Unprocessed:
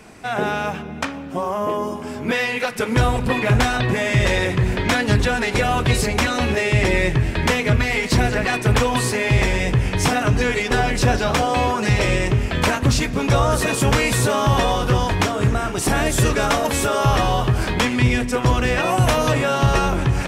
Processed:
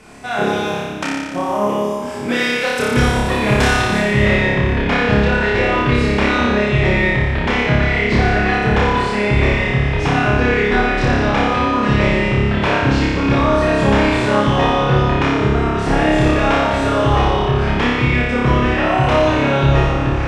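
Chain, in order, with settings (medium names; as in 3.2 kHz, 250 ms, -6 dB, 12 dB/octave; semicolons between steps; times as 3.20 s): low-pass 12 kHz 12 dB/octave, from 3.99 s 2.9 kHz; flutter echo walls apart 5 m, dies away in 1.5 s; trim -1 dB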